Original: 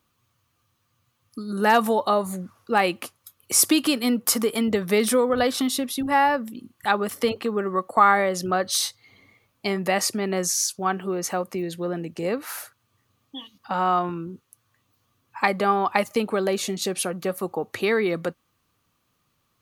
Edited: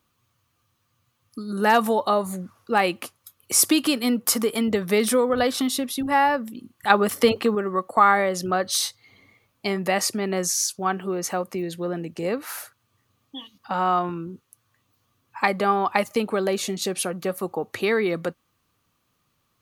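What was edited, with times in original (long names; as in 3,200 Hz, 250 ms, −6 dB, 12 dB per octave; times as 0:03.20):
0:06.90–0:07.55: clip gain +5 dB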